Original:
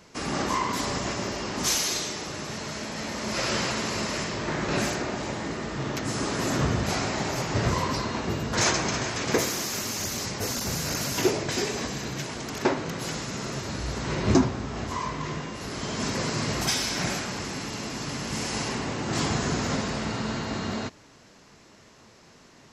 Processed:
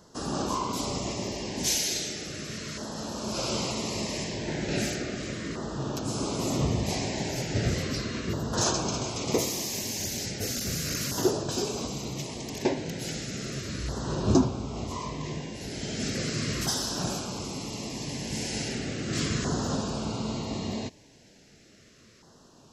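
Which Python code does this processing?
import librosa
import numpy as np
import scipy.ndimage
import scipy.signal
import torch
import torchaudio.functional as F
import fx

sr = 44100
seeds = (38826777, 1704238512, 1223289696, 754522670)

y = fx.filter_lfo_notch(x, sr, shape='saw_down', hz=0.36, low_hz=800.0, high_hz=2400.0, q=0.8)
y = F.gain(torch.from_numpy(y), -1.0).numpy()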